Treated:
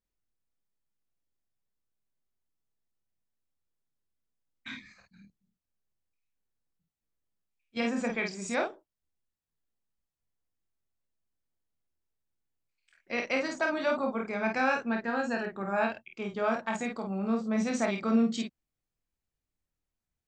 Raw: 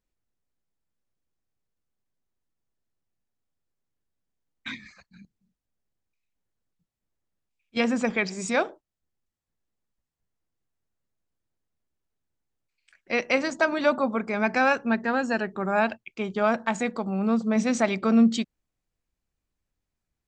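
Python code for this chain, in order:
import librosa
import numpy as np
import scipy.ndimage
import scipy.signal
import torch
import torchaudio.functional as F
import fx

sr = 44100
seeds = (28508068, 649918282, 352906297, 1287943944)

y = fx.room_early_taps(x, sr, ms=(26, 50), db=(-6.5, -4.5))
y = y * librosa.db_to_amplitude(-7.5)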